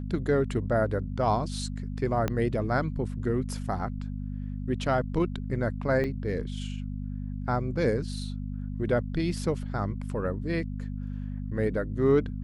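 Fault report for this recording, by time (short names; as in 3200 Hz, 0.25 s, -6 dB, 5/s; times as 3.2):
hum 50 Hz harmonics 5 -34 dBFS
2.28 pop -14 dBFS
6.04 gap 3.9 ms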